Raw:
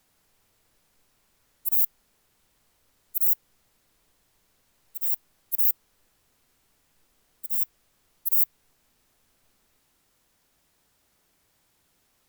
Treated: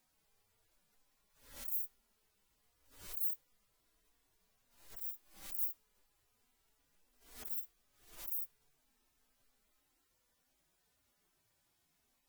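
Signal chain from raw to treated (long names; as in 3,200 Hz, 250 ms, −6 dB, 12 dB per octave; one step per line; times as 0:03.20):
harmonic-percussive split with one part muted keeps harmonic
background raised ahead of every attack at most 97 dB per second
level −5.5 dB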